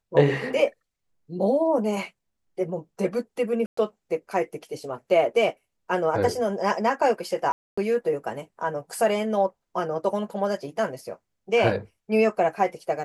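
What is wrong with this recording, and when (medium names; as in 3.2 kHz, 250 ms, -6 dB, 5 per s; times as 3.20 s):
3.66–3.77 s: dropout 114 ms
7.52–7.78 s: dropout 255 ms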